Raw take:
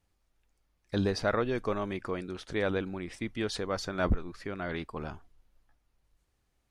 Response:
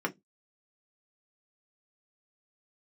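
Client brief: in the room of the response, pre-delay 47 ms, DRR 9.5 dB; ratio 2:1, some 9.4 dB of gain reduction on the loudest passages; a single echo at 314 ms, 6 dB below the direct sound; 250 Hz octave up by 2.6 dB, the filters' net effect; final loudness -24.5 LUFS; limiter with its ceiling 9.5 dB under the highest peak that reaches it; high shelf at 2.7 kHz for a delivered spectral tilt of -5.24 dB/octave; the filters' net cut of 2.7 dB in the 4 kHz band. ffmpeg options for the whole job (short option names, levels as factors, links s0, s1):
-filter_complex "[0:a]equalizer=f=250:t=o:g=3.5,highshelf=f=2700:g=6,equalizer=f=4000:t=o:g=-8.5,acompressor=threshold=0.0126:ratio=2,alimiter=level_in=2.82:limit=0.0631:level=0:latency=1,volume=0.355,aecho=1:1:314:0.501,asplit=2[s0][s1];[1:a]atrim=start_sample=2205,adelay=47[s2];[s1][s2]afir=irnorm=-1:irlink=0,volume=0.15[s3];[s0][s3]amix=inputs=2:normalize=0,volume=7.5"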